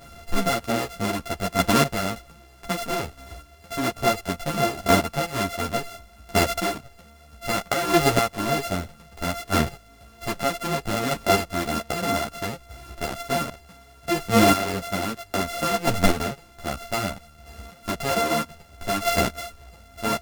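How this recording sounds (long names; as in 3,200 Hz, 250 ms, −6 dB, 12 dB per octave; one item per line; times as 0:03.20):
a buzz of ramps at a fixed pitch in blocks of 64 samples
chopped level 0.63 Hz, depth 60%, duty 15%
a shimmering, thickened sound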